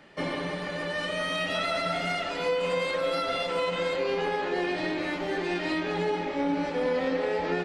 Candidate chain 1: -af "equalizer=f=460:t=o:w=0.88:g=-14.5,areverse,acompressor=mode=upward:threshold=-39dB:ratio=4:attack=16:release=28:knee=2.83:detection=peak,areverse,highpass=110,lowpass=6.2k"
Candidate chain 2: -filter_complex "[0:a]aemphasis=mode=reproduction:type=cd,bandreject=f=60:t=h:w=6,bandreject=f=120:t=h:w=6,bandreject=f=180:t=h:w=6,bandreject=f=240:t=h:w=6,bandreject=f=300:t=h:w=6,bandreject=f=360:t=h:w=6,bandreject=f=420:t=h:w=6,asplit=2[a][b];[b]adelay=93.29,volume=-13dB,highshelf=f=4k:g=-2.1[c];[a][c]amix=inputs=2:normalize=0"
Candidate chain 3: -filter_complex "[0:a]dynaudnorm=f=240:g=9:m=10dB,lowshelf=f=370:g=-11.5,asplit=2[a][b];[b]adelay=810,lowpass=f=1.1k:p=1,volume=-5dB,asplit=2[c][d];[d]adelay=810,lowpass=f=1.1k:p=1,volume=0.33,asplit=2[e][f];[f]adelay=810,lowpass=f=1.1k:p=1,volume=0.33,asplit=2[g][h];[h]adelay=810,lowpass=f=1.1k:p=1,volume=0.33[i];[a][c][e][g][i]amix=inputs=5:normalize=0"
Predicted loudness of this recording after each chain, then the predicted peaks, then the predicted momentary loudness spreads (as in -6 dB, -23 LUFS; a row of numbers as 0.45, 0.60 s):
-32.5, -29.0, -21.0 LUFS; -17.0, -16.5, -8.5 dBFS; 5, 4, 8 LU